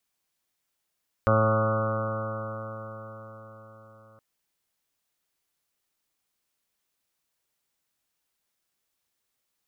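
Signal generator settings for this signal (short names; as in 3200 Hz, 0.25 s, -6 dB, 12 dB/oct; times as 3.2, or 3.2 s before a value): stretched partials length 2.92 s, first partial 109 Hz, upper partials -5.5/-12.5/-12/1/-10/-13/-14.5/-17.5/-6/-4/-9/-11 dB, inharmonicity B 0.00042, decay 4.99 s, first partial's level -22.5 dB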